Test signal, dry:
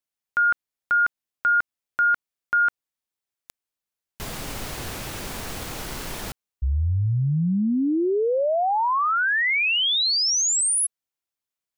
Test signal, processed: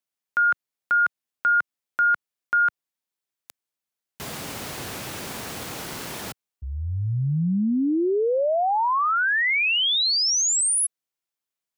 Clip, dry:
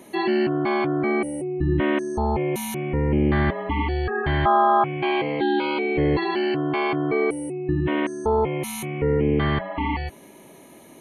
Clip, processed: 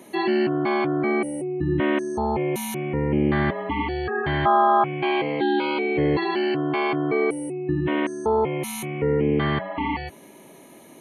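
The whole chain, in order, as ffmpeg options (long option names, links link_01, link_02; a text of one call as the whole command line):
ffmpeg -i in.wav -af "highpass=110" out.wav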